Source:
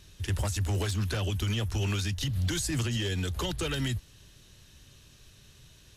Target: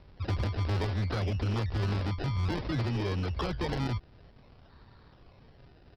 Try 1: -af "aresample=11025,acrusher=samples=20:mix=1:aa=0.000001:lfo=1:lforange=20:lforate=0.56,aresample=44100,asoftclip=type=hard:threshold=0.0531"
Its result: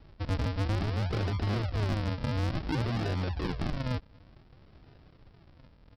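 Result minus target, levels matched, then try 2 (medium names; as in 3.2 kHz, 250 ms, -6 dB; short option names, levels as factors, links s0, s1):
decimation with a swept rate: distortion +7 dB
-af "aresample=11025,acrusher=samples=7:mix=1:aa=0.000001:lfo=1:lforange=7:lforate=0.56,aresample=44100,asoftclip=type=hard:threshold=0.0531"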